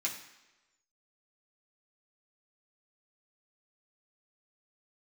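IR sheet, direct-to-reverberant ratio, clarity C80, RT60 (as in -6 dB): -4.0 dB, 10.5 dB, 1.1 s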